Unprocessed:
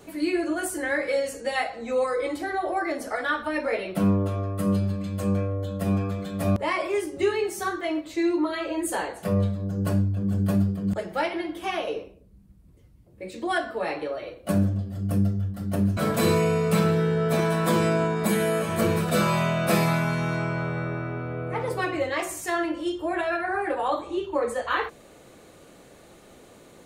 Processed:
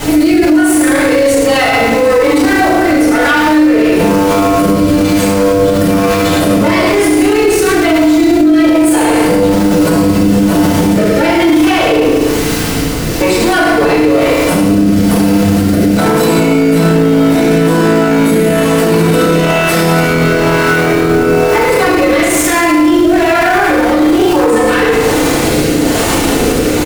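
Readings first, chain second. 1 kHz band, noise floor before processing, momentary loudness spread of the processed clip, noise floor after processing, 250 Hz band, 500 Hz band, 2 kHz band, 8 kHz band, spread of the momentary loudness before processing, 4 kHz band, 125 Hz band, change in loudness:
+15.5 dB, −51 dBFS, 2 LU, −12 dBFS, +19.0 dB, +17.0 dB, +17.0 dB, +19.5 dB, 7 LU, +18.5 dB, +10.5 dB, +16.5 dB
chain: gain on one half-wave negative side −12 dB
high-pass filter 160 Hz 24 dB per octave
reversed playback
downward compressor 4 to 1, threshold −42 dBFS, peak gain reduction 17 dB
reversed playback
background noise pink −58 dBFS
rotating-speaker cabinet horn 1.1 Hz
on a send: single-tap delay 108 ms −9 dB
on the sum: feedback delay network reverb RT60 1.1 s, low-frequency decay 1.1×, high-frequency decay 0.8×, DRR −8.5 dB
boost into a limiter +36 dB
level −1 dB

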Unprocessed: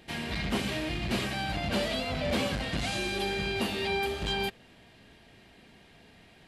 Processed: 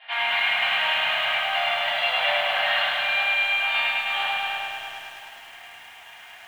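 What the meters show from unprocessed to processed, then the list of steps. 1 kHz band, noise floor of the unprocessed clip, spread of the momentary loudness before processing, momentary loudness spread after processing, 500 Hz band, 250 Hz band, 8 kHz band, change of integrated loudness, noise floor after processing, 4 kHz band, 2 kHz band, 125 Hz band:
+10.0 dB, −57 dBFS, 3 LU, 17 LU, +1.0 dB, below −20 dB, can't be measured, +9.0 dB, −45 dBFS, +10.0 dB, +13.5 dB, below −20 dB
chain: elliptic band-pass filter 770–3,300 Hz, stop band 40 dB
compressor whose output falls as the input rises −39 dBFS, ratio −0.5
delay that swaps between a low-pass and a high-pass 339 ms, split 1,300 Hz, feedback 56%, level −10 dB
rectangular room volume 230 cubic metres, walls mixed, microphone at 3.2 metres
feedback echo at a low word length 104 ms, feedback 80%, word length 9 bits, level −3.5 dB
level +2 dB

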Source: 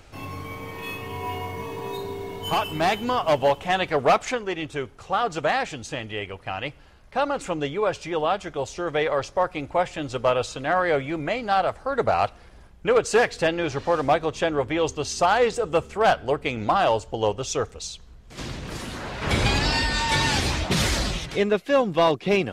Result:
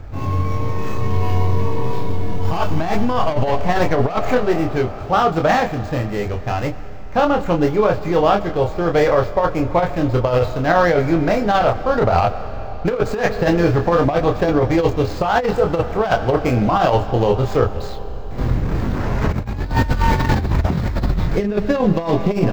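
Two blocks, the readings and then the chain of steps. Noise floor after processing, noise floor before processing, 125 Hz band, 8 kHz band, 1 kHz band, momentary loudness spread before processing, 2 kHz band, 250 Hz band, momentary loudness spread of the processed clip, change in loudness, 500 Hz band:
−27 dBFS, −48 dBFS, +12.5 dB, can't be measured, +4.5 dB, 12 LU, +1.5 dB, +10.0 dB, 8 LU, +5.5 dB, +5.5 dB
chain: running median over 15 samples
low-shelf EQ 190 Hz +11.5 dB
on a send: ambience of single reflections 24 ms −5 dB, 34 ms −11 dB
on the sum: comb and all-pass reverb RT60 4.4 s, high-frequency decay 1×, pre-delay 45 ms, DRR 15 dB
compressor whose output falls as the input rises −19 dBFS, ratio −0.5
parametric band 10,000 Hz −11.5 dB 0.73 octaves
level +5 dB

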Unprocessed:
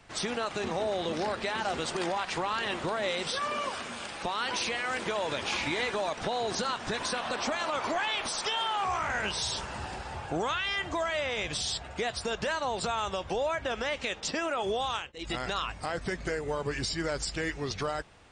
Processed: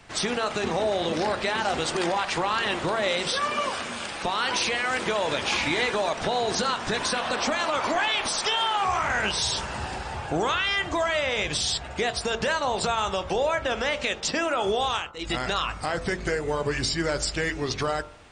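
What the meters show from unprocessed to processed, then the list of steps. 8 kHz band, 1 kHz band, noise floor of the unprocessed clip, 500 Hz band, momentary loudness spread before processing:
+6.0 dB, +5.5 dB, −44 dBFS, +5.5 dB, 4 LU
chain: hum removal 45.7 Hz, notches 32
level +6 dB

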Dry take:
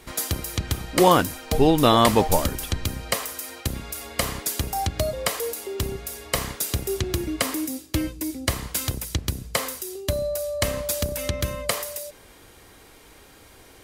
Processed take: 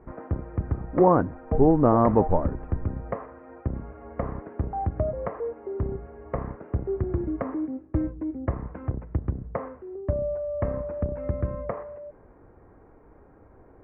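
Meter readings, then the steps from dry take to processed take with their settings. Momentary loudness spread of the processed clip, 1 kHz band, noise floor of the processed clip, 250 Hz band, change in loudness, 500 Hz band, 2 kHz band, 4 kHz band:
15 LU, −4.0 dB, −53 dBFS, −0.5 dB, −3.0 dB, −1.0 dB, −15.0 dB, below −40 dB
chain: Gaussian smoothing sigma 7.2 samples

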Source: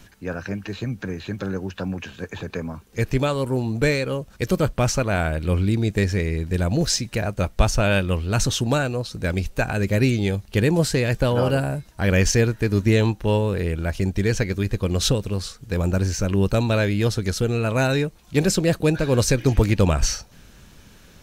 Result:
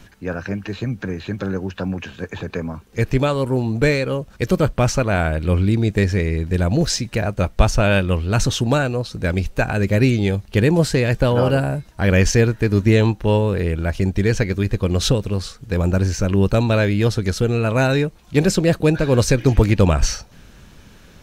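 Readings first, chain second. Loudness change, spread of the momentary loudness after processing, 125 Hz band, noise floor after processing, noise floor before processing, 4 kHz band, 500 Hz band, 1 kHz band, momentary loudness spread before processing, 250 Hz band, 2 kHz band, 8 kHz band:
+3.0 dB, 10 LU, +3.5 dB, −47 dBFS, −50 dBFS, +1.0 dB, +3.5 dB, +3.5 dB, 10 LU, +3.5 dB, +2.5 dB, −0.5 dB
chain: high-shelf EQ 4,900 Hz −6 dB
level +3.5 dB

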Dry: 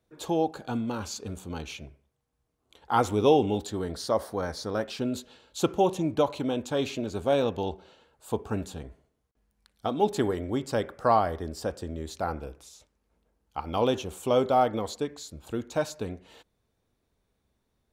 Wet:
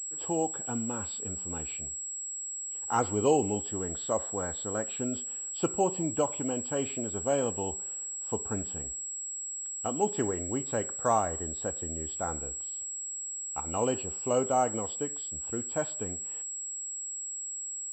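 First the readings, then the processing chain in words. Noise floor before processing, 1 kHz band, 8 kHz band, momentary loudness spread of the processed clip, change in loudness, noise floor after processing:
−77 dBFS, −4.0 dB, +15.0 dB, 7 LU, −2.5 dB, −38 dBFS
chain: hearing-aid frequency compression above 2,300 Hz 1.5 to 1
switching amplifier with a slow clock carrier 7,700 Hz
level −4 dB

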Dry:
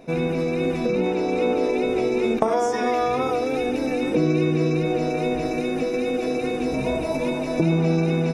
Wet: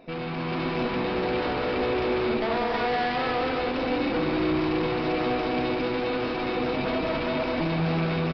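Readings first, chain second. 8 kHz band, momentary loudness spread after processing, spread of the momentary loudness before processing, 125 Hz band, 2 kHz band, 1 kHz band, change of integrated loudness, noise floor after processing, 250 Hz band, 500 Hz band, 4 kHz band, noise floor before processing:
below −15 dB, 2 LU, 4 LU, −5.5 dB, +1.5 dB, −1.0 dB, −3.5 dB, −30 dBFS, −4.5 dB, −5.0 dB, +2.5 dB, −26 dBFS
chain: stylus tracing distortion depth 0.18 ms
bass and treble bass −5 dB, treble −2 dB
tube saturation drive 29 dB, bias 0.7
loudspeakers that aren't time-aligned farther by 65 metres −4 dB, 99 metres −9 dB
downsampling to 11,025 Hz
automatic gain control gain up to 4 dB
parametric band 450 Hz −3.5 dB 0.65 octaves
level +1 dB

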